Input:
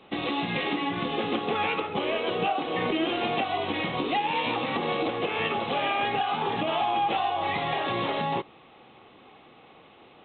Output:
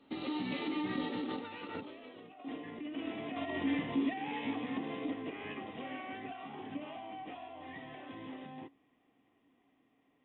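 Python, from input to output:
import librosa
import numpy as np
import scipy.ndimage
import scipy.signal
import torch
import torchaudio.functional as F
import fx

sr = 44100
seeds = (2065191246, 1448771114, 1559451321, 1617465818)

y = fx.doppler_pass(x, sr, speed_mps=24, closest_m=6.5, pass_at_s=2.18)
y = fx.low_shelf(y, sr, hz=160.0, db=4.0)
y = fx.over_compress(y, sr, threshold_db=-43.0, ratio=-1.0)
y = fx.small_body(y, sr, hz=(270.0, 1900.0), ring_ms=85, db=16)
y = F.gain(torch.from_numpy(y), -1.5).numpy()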